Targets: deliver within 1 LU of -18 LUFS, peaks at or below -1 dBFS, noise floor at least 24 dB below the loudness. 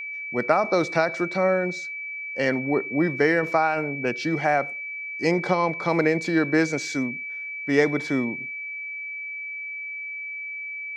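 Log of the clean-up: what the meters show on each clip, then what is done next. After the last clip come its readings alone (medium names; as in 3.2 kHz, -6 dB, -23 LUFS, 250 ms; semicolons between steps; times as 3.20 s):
steady tone 2.3 kHz; tone level -31 dBFS; loudness -25.0 LUFS; peak level -5.0 dBFS; loudness target -18.0 LUFS
-> band-stop 2.3 kHz, Q 30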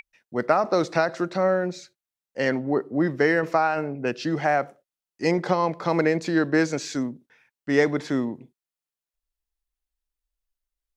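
steady tone not found; loudness -24.5 LUFS; peak level -5.0 dBFS; loudness target -18.0 LUFS
-> trim +6.5 dB; peak limiter -1 dBFS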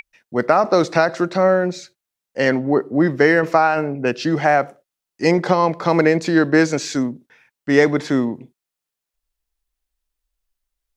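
loudness -18.0 LUFS; peak level -1.0 dBFS; noise floor -85 dBFS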